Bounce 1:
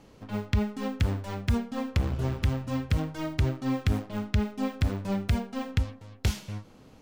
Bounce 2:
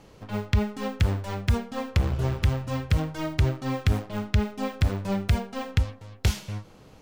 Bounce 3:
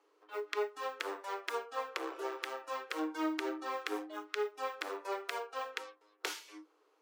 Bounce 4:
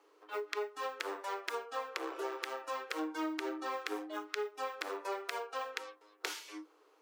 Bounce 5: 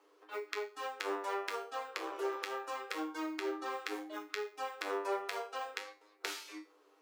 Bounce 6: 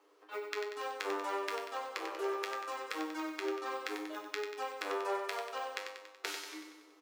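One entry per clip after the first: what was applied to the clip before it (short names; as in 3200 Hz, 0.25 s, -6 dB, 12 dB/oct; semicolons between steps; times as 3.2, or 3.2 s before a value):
bell 250 Hz -7.5 dB 0.39 oct; gain +3.5 dB
rippled Chebyshev high-pass 300 Hz, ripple 9 dB; spectral noise reduction 13 dB; gain +1 dB
compressor 2.5:1, threshold -42 dBFS, peak gain reduction 9 dB; gain +5 dB
resonator 99 Hz, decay 0.34 s, harmonics all, mix 80%; gain +7.5 dB
feedback echo 94 ms, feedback 58%, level -7 dB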